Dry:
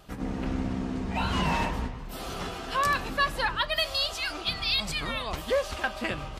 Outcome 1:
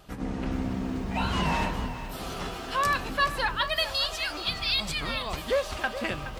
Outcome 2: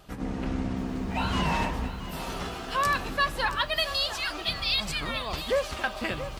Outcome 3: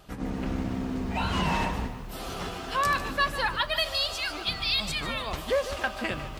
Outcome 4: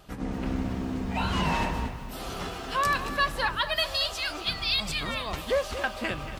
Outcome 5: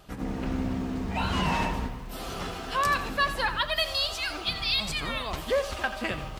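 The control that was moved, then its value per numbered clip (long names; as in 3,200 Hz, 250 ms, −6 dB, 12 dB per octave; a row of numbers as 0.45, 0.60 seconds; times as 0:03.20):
feedback echo at a low word length, delay time: 422, 677, 148, 230, 85 milliseconds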